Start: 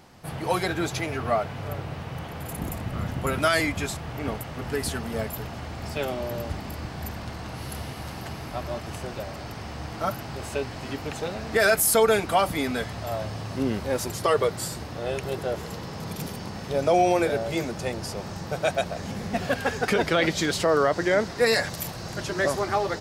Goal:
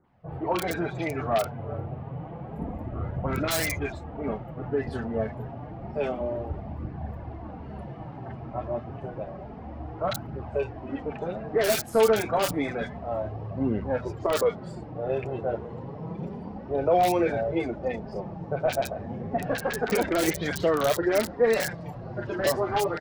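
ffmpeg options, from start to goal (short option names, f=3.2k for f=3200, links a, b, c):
-filter_complex "[0:a]afftdn=nr=13:nf=-35,bass=f=250:g=-3,treble=f=4k:g=-13,flanger=delay=0.4:depth=8.9:regen=-21:speed=0.29:shape=triangular,highshelf=f=6.2k:g=7,asplit=2[a][b];[b]alimiter=limit=-22dB:level=0:latency=1:release=59,volume=-1.5dB[c];[a][c]amix=inputs=2:normalize=0,adynamicsmooth=sensitivity=2:basefreq=2.8k,bandreject=f=49.73:t=h:w=4,bandreject=f=99.46:t=h:w=4,bandreject=f=149.19:t=h:w=4,bandreject=f=198.92:t=h:w=4,bandreject=f=248.65:t=h:w=4,acrossover=split=760[d][e];[e]aeval=exprs='(mod(11.2*val(0)+1,2)-1)/11.2':c=same[f];[d][f]amix=inputs=2:normalize=0,acrossover=split=1400|4400[g][h][i];[h]adelay=40[j];[i]adelay=70[k];[g][j][k]amix=inputs=3:normalize=0"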